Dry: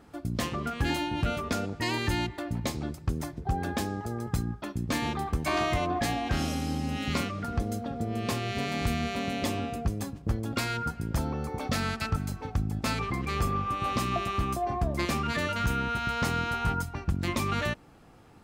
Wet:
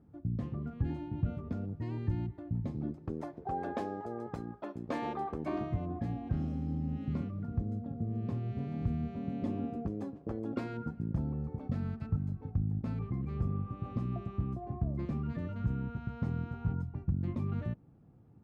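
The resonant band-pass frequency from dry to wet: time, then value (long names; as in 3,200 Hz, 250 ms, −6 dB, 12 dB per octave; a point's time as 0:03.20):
resonant band-pass, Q 1.1
0:02.62 120 Hz
0:03.27 560 Hz
0:05.29 560 Hz
0:05.72 130 Hz
0:09.19 130 Hz
0:10.26 470 Hz
0:11.35 130 Hz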